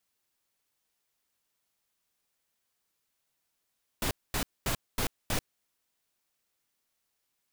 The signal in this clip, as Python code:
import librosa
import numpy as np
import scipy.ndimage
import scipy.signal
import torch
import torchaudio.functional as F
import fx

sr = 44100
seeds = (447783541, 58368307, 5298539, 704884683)

y = fx.noise_burst(sr, seeds[0], colour='pink', on_s=0.09, off_s=0.23, bursts=5, level_db=-29.5)